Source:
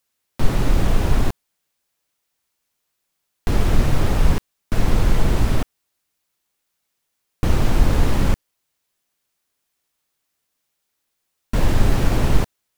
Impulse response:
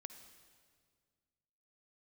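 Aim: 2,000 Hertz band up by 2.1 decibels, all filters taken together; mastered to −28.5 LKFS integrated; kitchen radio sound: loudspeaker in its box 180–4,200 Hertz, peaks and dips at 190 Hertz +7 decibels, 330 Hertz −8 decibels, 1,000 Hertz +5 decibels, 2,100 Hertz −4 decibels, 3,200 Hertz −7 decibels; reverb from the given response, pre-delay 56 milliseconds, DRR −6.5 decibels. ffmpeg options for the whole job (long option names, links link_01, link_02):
-filter_complex "[0:a]equalizer=frequency=2000:width_type=o:gain=5,asplit=2[link_01][link_02];[1:a]atrim=start_sample=2205,adelay=56[link_03];[link_02][link_03]afir=irnorm=-1:irlink=0,volume=12dB[link_04];[link_01][link_04]amix=inputs=2:normalize=0,highpass=180,equalizer=frequency=190:width_type=q:width=4:gain=7,equalizer=frequency=330:width_type=q:width=4:gain=-8,equalizer=frequency=1000:width_type=q:width=4:gain=5,equalizer=frequency=2100:width_type=q:width=4:gain=-4,equalizer=frequency=3200:width_type=q:width=4:gain=-7,lowpass=frequency=4200:width=0.5412,lowpass=frequency=4200:width=1.3066,volume=-10dB"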